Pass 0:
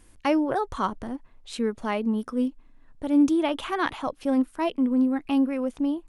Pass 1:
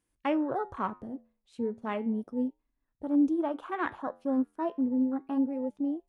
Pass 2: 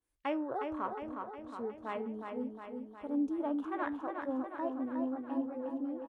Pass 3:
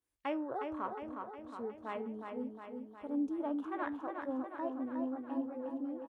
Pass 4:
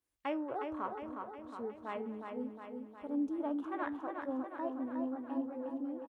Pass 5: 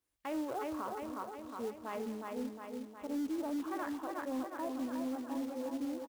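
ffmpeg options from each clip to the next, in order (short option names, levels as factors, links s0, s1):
-af "afwtdn=0.0224,highpass=77,flanger=delay=6.4:depth=5.5:regen=-82:speed=0.33:shape=triangular,volume=0.891"
-filter_complex "[0:a]equalizer=f=170:t=o:w=0.95:g=-12,asplit=2[s0][s1];[s1]aecho=0:1:361|722|1083|1444|1805|2166|2527|2888:0.562|0.332|0.196|0.115|0.0681|0.0402|0.0237|0.014[s2];[s0][s2]amix=inputs=2:normalize=0,adynamicequalizer=threshold=0.00398:dfrequency=1700:dqfactor=0.7:tfrequency=1700:tqfactor=0.7:attack=5:release=100:ratio=0.375:range=2.5:mode=cutabove:tftype=highshelf,volume=0.596"
-af "highpass=53,volume=0.794"
-af "aecho=1:1:230:0.1"
-af "alimiter=level_in=2.51:limit=0.0631:level=0:latency=1:release=11,volume=0.398,acrusher=bits=4:mode=log:mix=0:aa=0.000001,volume=1.19"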